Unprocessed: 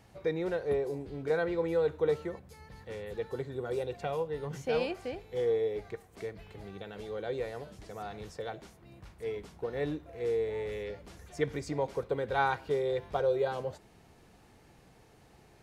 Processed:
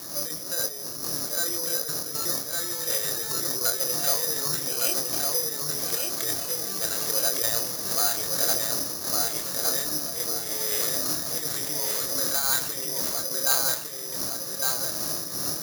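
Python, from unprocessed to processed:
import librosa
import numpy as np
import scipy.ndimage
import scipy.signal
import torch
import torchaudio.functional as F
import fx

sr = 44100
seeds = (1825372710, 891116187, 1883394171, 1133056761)

y = fx.wiener(x, sr, points=9)
y = fx.dmg_wind(y, sr, seeds[0], corner_hz=310.0, level_db=-39.0)
y = fx.peak_eq(y, sr, hz=720.0, db=-7.0, octaves=0.75)
y = fx.over_compress(y, sr, threshold_db=-39.0, ratio=-1.0)
y = fx.fold_sine(y, sr, drive_db=14, ceiling_db=-13.5)
y = fx.cabinet(y, sr, low_hz=190.0, low_slope=12, high_hz=3400.0, hz=(220.0, 420.0, 650.0, 1200.0, 1700.0, 2800.0), db=(-10, -8, 9, 9, 8, 4))
y = fx.doubler(y, sr, ms=26.0, db=-5.5)
y = fx.echo_feedback(y, sr, ms=1158, feedback_pct=38, wet_db=-3)
y = (np.kron(y[::8], np.eye(8)[0]) * 8)[:len(y)]
y = F.gain(torch.from_numpy(y), -14.5).numpy()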